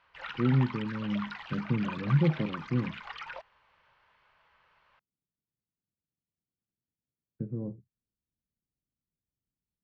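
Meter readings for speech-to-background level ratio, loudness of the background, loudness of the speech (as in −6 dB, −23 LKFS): 10.0 dB, −41.0 LKFS, −31.0 LKFS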